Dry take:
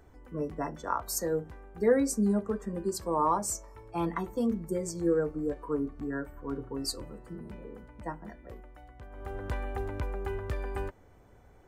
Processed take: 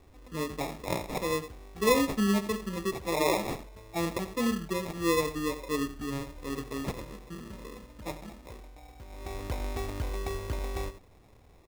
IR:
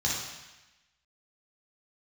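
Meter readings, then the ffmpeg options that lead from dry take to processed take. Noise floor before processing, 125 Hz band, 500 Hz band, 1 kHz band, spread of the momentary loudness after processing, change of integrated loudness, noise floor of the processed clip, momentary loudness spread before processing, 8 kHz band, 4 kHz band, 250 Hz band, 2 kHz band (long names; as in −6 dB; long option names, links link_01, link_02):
−57 dBFS, +1.0 dB, −0.5 dB, −0.5 dB, 17 LU, +0.5 dB, −57 dBFS, 17 LU, −2.5 dB, +6.5 dB, 0.0 dB, +6.5 dB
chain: -af "aecho=1:1:85:0.237,acrusher=samples=29:mix=1:aa=0.000001"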